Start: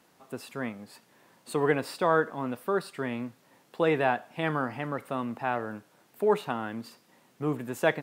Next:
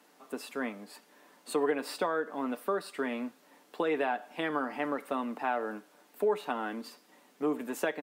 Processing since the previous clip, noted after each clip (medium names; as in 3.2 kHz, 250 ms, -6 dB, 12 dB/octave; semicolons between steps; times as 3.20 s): compression 6:1, threshold -27 dBFS, peak gain reduction 9.5 dB; Chebyshev high-pass 210 Hz, order 4; comb 6.8 ms, depth 41%; trim +1 dB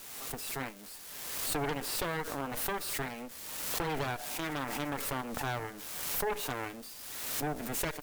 zero-crossing glitches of -34.5 dBFS; Chebyshev shaper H 6 -7 dB, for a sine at -16.5 dBFS; swell ahead of each attack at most 33 dB/s; trim -8.5 dB